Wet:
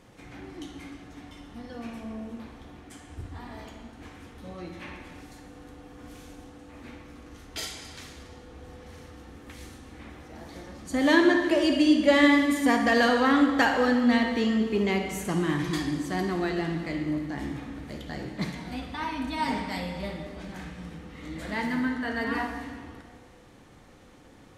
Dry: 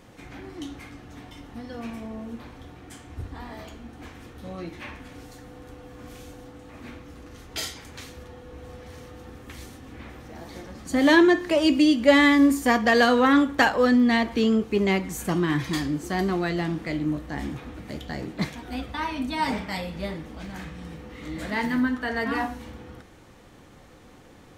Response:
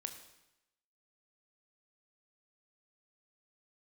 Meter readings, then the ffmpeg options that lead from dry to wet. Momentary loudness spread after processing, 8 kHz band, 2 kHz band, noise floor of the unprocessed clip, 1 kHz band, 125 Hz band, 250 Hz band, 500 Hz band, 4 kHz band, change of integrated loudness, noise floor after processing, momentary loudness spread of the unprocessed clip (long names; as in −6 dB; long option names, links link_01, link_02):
23 LU, −2.5 dB, −2.5 dB, −50 dBFS, −2.5 dB, −3.0 dB, −2.5 dB, −3.0 dB, −2.5 dB, −2.5 dB, −52 dBFS, 24 LU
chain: -filter_complex "[1:a]atrim=start_sample=2205,asetrate=23814,aresample=44100[link_01];[0:a][link_01]afir=irnorm=-1:irlink=0,volume=-4dB"